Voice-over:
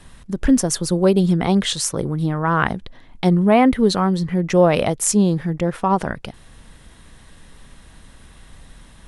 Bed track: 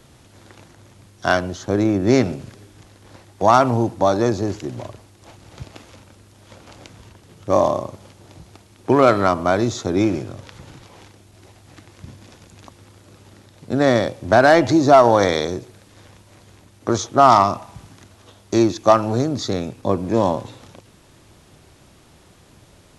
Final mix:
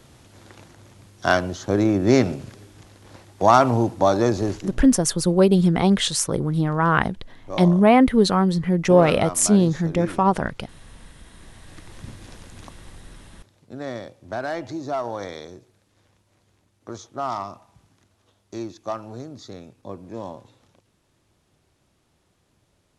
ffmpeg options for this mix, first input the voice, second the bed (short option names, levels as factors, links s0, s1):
-filter_complex "[0:a]adelay=4350,volume=0.944[s0];[1:a]volume=4.47,afade=t=out:st=4.48:d=0.36:silence=0.211349,afade=t=in:st=11.24:d=0.69:silence=0.199526,afade=t=out:st=12.66:d=1.02:silence=0.16788[s1];[s0][s1]amix=inputs=2:normalize=0"